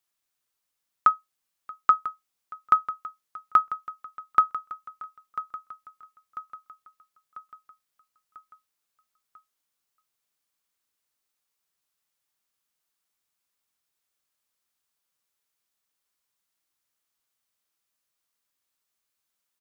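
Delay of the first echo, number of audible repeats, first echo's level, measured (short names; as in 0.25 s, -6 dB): 0.994 s, 4, -13.5 dB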